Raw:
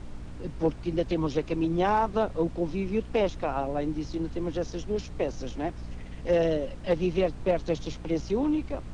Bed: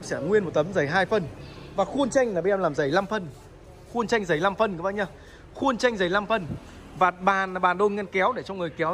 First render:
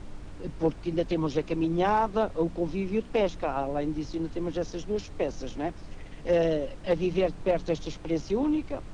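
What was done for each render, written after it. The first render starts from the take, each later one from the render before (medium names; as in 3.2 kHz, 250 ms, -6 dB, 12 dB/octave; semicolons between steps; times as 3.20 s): de-hum 60 Hz, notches 4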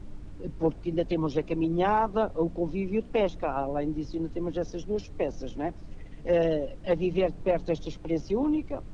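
noise reduction 8 dB, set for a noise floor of -43 dBFS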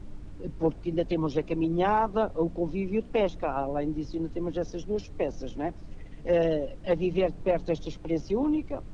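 no audible change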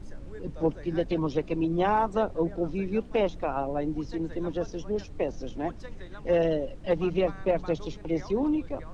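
add bed -24 dB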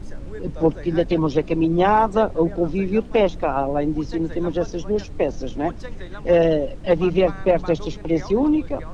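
trim +8 dB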